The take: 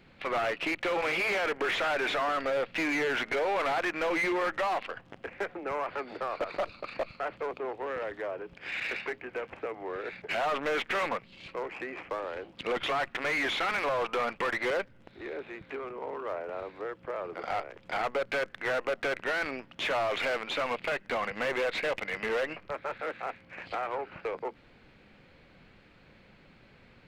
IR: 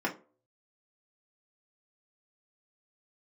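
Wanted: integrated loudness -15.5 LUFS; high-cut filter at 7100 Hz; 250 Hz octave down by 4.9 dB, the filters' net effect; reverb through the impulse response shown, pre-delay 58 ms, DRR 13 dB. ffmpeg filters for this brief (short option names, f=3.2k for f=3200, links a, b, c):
-filter_complex "[0:a]lowpass=7.1k,equalizer=f=250:t=o:g=-7.5,asplit=2[a][b];[1:a]atrim=start_sample=2205,adelay=58[c];[b][c]afir=irnorm=-1:irlink=0,volume=-21dB[d];[a][d]amix=inputs=2:normalize=0,volume=17dB"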